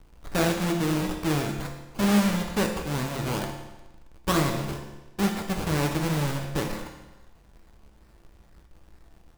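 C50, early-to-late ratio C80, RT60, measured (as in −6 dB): 6.0 dB, 8.0 dB, 1.1 s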